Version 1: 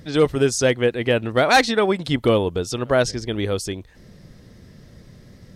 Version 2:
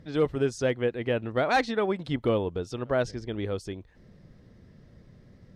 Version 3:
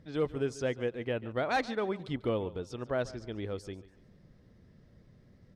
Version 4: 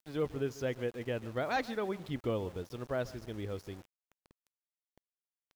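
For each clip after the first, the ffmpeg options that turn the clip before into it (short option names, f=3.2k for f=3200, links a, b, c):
-af "lowpass=f=2.1k:p=1,volume=-7.5dB"
-af "aecho=1:1:143|286|429:0.126|0.0441|0.0154,volume=-6dB"
-af "equalizer=f=76:t=o:w=1.6:g=3.5,aresample=16000,aresample=44100,aeval=exprs='val(0)*gte(abs(val(0)),0.00473)':c=same,volume=-3dB"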